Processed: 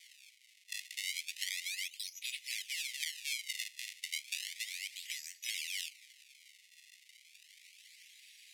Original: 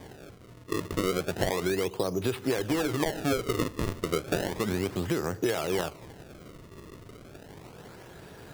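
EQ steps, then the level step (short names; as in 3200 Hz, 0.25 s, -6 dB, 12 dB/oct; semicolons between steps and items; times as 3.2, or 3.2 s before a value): steep high-pass 2000 Hz 96 dB/oct; LPF 12000 Hz 12 dB/oct; 0.0 dB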